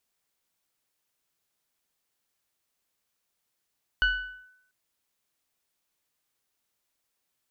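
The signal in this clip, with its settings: FM tone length 0.69 s, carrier 1500 Hz, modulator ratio 0.97, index 0.73, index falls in 0.47 s linear, decay 0.76 s, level -17.5 dB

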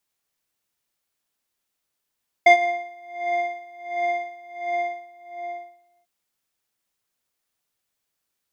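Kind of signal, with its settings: synth patch with tremolo F5, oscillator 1 square, oscillator 2 square, interval +19 st, detune 16 cents, oscillator 2 level -3 dB, sub -19.5 dB, noise -24 dB, filter lowpass, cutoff 930 Hz, Q 0.73, filter envelope 1.5 oct, filter sustain 50%, attack 6.8 ms, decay 0.10 s, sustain -20.5 dB, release 1.45 s, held 2.15 s, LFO 1.4 Hz, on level 21.5 dB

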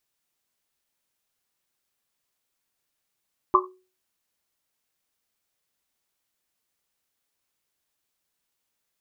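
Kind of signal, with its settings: Risset drum, pitch 370 Hz, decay 0.37 s, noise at 1100 Hz, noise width 170 Hz, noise 65%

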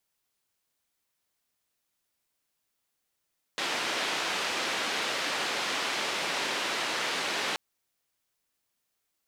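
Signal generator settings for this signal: noise band 280–3500 Hz, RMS -31 dBFS 3.98 s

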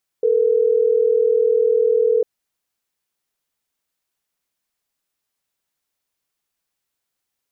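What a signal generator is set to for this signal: call progress tone ringback tone, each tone -16 dBFS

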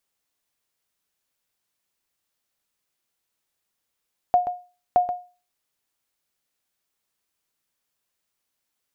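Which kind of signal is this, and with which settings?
sonar ping 717 Hz, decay 0.34 s, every 0.62 s, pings 2, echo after 0.13 s, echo -10.5 dB -10 dBFS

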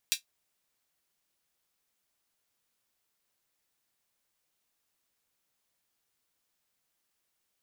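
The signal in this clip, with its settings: closed hi-hat, high-pass 3100 Hz, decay 0.12 s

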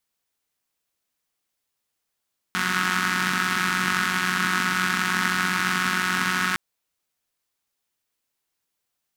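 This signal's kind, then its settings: four-cylinder engine model, steady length 4.01 s, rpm 5500, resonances 220/1400 Hz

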